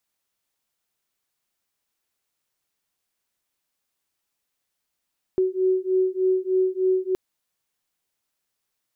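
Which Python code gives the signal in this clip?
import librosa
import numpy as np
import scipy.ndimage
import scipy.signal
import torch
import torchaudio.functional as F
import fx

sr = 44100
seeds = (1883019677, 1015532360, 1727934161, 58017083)

y = fx.two_tone_beats(sr, length_s=1.77, hz=372.0, beat_hz=3.3, level_db=-22.0)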